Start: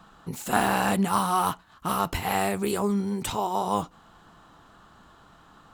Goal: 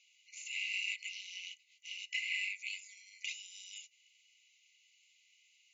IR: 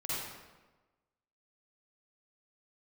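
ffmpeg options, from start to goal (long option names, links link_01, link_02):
-filter_complex "[0:a]superequalizer=13b=0.282:14b=0.501,acrossover=split=4000[link_01][link_02];[link_02]acompressor=threshold=-43dB:ratio=4:attack=1:release=60[link_03];[link_01][link_03]amix=inputs=2:normalize=0,afftfilt=real='re*between(b*sr/4096,2000,7300)':imag='im*between(b*sr/4096,2000,7300)':win_size=4096:overlap=0.75,volume=2dB"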